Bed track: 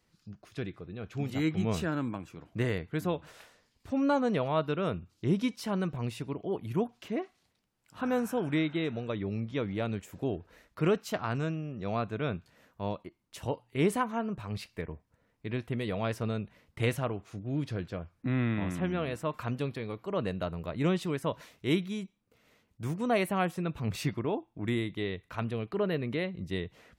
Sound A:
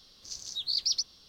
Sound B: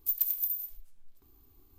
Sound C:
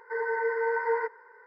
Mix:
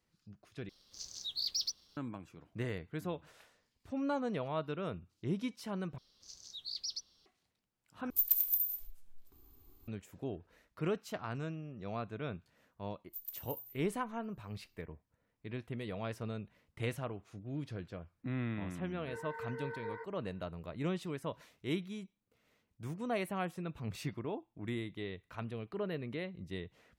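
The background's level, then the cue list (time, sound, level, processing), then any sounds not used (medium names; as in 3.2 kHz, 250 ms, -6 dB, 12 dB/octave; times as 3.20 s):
bed track -8 dB
0.69 s: replace with A -9.5 dB + waveshaping leveller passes 1
5.98 s: replace with A -12 dB
8.10 s: replace with B -0.5 dB
13.07 s: add B -16 dB
18.97 s: add C -16 dB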